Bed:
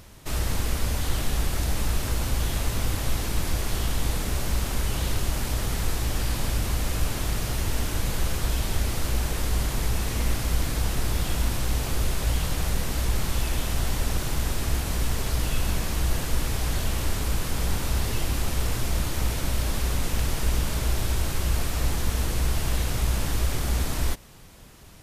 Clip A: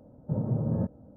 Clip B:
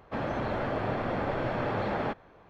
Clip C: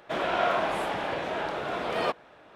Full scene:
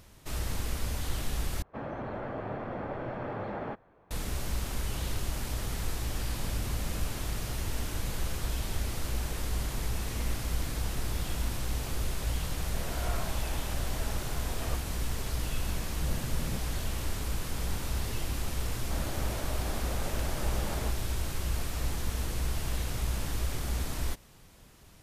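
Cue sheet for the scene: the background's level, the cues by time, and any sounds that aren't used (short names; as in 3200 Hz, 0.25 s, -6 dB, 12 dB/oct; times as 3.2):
bed -7 dB
1.62 replace with B -5.5 dB + bell 4700 Hz -9 dB 1.9 oct
6.15 add A -16.5 dB
12.64 add C -15 dB
15.73 add A -11.5 dB + vocal rider
18.78 add B -9.5 dB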